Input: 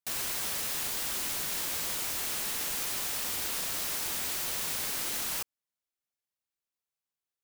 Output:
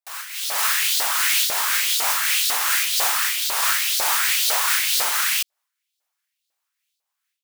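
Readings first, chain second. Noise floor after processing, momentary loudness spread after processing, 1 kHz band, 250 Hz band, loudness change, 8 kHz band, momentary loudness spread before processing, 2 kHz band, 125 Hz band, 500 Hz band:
-81 dBFS, 4 LU, +16.0 dB, n/a, +12.0 dB, +11.5 dB, 0 LU, +16.5 dB, under -10 dB, +7.5 dB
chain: dynamic EQ 1300 Hz, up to +4 dB, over -57 dBFS, Q 0.95; AGC gain up to 14.5 dB; LFO high-pass saw up 2 Hz 590–4400 Hz; wavefolder -8 dBFS; noise-modulated level, depth 60%

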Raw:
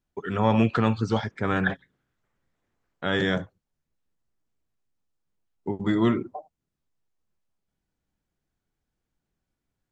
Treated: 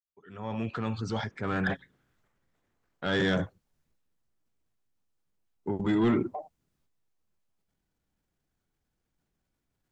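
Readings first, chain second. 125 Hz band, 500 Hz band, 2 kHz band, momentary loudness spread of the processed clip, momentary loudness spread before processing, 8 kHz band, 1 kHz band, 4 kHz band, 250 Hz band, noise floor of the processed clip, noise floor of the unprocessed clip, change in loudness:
-6.0 dB, -4.5 dB, -4.0 dB, 14 LU, 17 LU, n/a, -7.0 dB, -3.5 dB, -4.5 dB, -82 dBFS, -84 dBFS, -5.0 dB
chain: opening faded in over 2.34 s; soft clip -17.5 dBFS, distortion -14 dB; transient shaper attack -2 dB, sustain +6 dB

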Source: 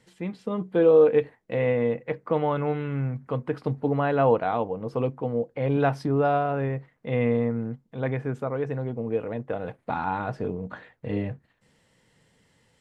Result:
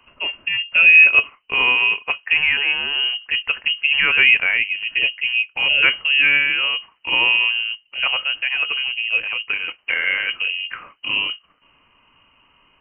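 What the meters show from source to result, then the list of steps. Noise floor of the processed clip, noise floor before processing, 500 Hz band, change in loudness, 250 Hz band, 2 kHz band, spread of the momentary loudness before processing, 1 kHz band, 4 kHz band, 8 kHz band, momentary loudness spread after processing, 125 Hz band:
-60 dBFS, -67 dBFS, -15.5 dB, +10.0 dB, -15.5 dB, +24.0 dB, 11 LU, -2.5 dB, +32.5 dB, n/a, 11 LU, under -20 dB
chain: high shelf 2300 Hz +11 dB; inverted band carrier 3000 Hz; bell 840 Hz -2.5 dB 0.26 oct; gain +6 dB

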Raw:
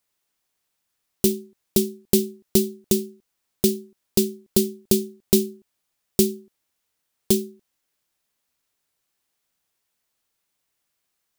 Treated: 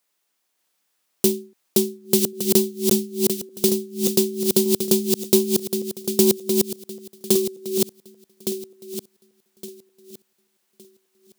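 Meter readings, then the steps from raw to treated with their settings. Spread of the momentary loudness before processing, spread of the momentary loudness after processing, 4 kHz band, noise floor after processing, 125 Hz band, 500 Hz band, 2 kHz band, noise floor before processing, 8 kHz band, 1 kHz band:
10 LU, 16 LU, +4.0 dB, -73 dBFS, 0.0 dB, +4.0 dB, +4.5 dB, -77 dBFS, +4.0 dB, +6.0 dB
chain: regenerating reverse delay 0.582 s, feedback 51%, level -3 dB; in parallel at -6.5 dB: soft clip -17.5 dBFS, distortion -9 dB; on the sum: HPF 210 Hz 12 dB/oct

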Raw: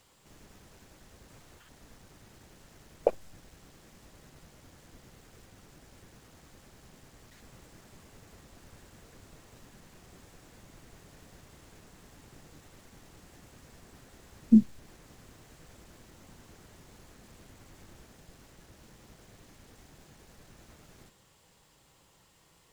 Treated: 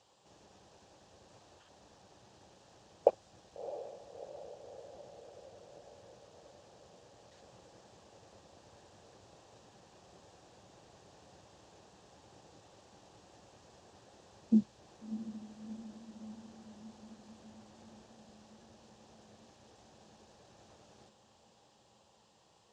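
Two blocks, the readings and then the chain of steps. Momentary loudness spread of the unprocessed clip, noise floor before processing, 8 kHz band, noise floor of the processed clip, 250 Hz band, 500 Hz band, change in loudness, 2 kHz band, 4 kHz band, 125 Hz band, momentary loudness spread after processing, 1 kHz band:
9 LU, -64 dBFS, -6.0 dB, -67 dBFS, -7.5 dB, 0.0 dB, -13.5 dB, -7.5 dB, n/a, -7.0 dB, 27 LU, +1.5 dB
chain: speaker cabinet 110–7000 Hz, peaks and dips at 150 Hz -7 dB, 250 Hz -8 dB, 560 Hz +4 dB, 800 Hz +6 dB, 1400 Hz -5 dB, 2100 Hz -10 dB; diffused feedback echo 0.666 s, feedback 65%, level -12 dB; gain -3 dB

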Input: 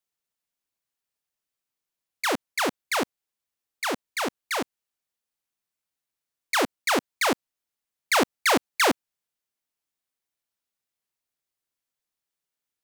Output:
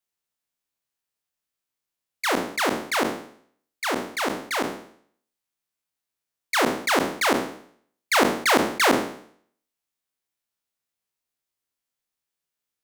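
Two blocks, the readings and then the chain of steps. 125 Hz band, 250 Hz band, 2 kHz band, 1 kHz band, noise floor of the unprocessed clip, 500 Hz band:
+6.0 dB, +4.0 dB, +2.5 dB, +3.0 dB, under -85 dBFS, +3.5 dB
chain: spectral trails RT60 0.59 s; gain -1 dB

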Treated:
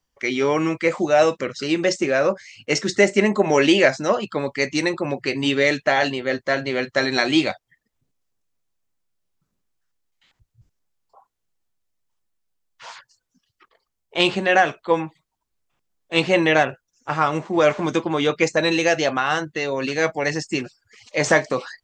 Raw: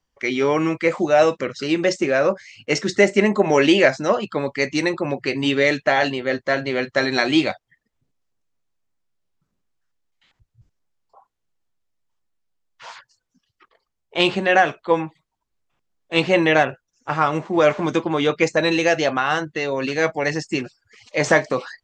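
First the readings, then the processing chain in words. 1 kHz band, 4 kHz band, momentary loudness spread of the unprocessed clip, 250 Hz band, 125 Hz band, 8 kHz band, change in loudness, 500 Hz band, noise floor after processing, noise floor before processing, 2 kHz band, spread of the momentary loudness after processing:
-1.0 dB, +0.5 dB, 9 LU, -1.0 dB, -1.0 dB, +2.5 dB, -0.5 dB, -1.0 dB, -78 dBFS, -78 dBFS, -0.5 dB, 9 LU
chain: high shelf 6100 Hz +6.5 dB; gain -1 dB

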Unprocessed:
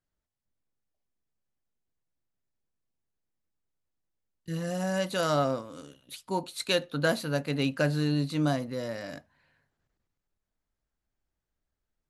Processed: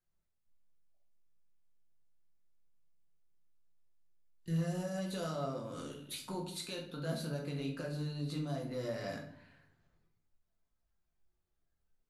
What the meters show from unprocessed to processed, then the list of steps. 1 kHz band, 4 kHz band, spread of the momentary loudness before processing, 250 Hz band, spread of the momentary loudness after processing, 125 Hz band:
-12.0 dB, -10.5 dB, 19 LU, -9.0 dB, 8 LU, -6.5 dB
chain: spectral noise reduction 7 dB; dynamic EQ 1700 Hz, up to -5 dB, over -40 dBFS, Q 0.77; compressor 3:1, threshold -42 dBFS, peak gain reduction 14.5 dB; limiter -34.5 dBFS, peak gain reduction 7.5 dB; shoebox room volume 85 m³, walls mixed, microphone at 0.82 m; gain +1 dB

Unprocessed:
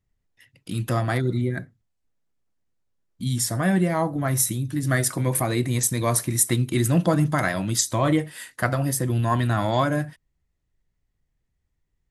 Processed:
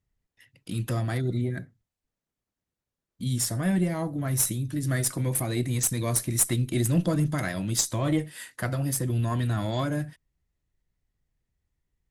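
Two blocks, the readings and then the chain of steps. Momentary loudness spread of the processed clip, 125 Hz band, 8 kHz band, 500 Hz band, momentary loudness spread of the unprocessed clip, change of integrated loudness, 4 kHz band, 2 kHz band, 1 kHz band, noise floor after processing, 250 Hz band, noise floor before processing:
8 LU, -3.0 dB, -2.5 dB, -6.5 dB, 7 LU, -4.0 dB, -3.5 dB, -7.5 dB, -10.0 dB, under -85 dBFS, -4.0 dB, -76 dBFS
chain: dynamic EQ 990 Hz, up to -8 dB, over -38 dBFS, Q 0.73; added harmonics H 4 -21 dB, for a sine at -6.5 dBFS; gain -2.5 dB

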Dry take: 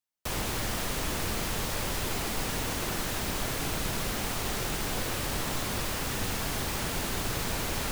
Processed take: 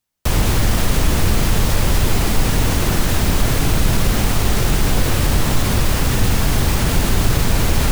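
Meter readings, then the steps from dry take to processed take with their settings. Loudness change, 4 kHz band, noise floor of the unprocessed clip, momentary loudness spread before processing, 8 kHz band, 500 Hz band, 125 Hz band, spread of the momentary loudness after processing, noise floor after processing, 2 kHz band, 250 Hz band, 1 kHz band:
+13.0 dB, +10.0 dB, -33 dBFS, 0 LU, +10.0 dB, +11.5 dB, +19.0 dB, 1 LU, -18 dBFS, +10.0 dB, +15.0 dB, +10.5 dB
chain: low shelf 200 Hz +12 dB; in parallel at -0.5 dB: limiter -20 dBFS, peak gain reduction 8.5 dB; on the sum: gain +5.5 dB

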